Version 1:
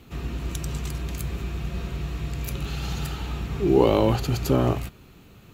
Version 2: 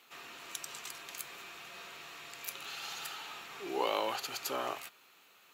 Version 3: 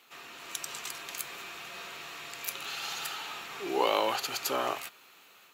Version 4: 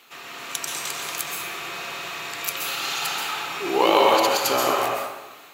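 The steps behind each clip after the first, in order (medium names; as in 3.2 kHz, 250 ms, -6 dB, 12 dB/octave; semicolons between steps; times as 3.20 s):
high-pass 920 Hz 12 dB/octave; trim -3.5 dB
level rider gain up to 4 dB; trim +1.5 dB
plate-style reverb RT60 1.2 s, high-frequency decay 0.55×, pre-delay 115 ms, DRR -0.5 dB; trim +7.5 dB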